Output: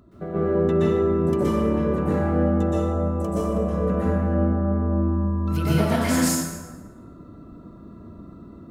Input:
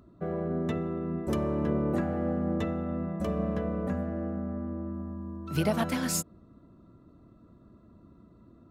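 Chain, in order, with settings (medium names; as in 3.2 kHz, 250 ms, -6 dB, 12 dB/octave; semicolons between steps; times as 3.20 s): 2.57–3.77 s: ten-band graphic EQ 125 Hz -9 dB, 250 Hz -5 dB, 2 kHz -11 dB, 4 kHz -6 dB, 8 kHz +6 dB; compression, threshold -30 dBFS, peak gain reduction 9 dB; plate-style reverb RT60 1.3 s, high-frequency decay 0.65×, pre-delay 110 ms, DRR -9.5 dB; trim +2.5 dB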